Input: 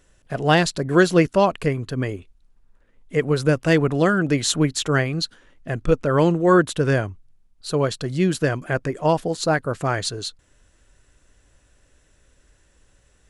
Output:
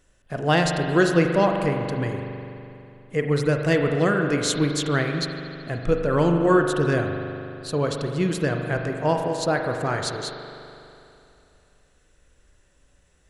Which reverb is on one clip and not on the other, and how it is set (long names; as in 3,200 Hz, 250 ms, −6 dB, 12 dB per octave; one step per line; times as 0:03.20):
spring reverb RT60 2.8 s, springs 41 ms, chirp 35 ms, DRR 3.5 dB
level −3.5 dB